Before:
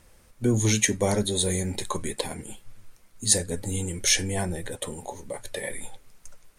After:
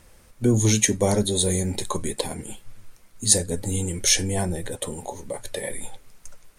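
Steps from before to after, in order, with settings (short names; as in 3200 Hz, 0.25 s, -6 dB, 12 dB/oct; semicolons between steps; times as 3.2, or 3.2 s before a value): dynamic EQ 1900 Hz, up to -5 dB, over -44 dBFS, Q 0.88; gain +3.5 dB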